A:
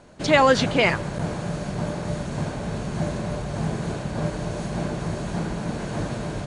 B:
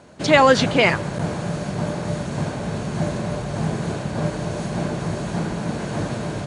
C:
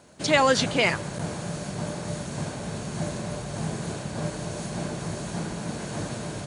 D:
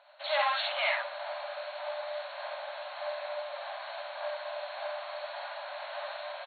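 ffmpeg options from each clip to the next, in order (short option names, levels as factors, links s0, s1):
-af "highpass=70,volume=1.41"
-af "crystalizer=i=2:c=0,volume=0.447"
-af "asoftclip=type=hard:threshold=0.0708,aecho=1:1:52|67:0.708|0.668,afftfilt=real='re*between(b*sr/4096,540,4400)':imag='im*between(b*sr/4096,540,4400)':win_size=4096:overlap=0.75,volume=0.668"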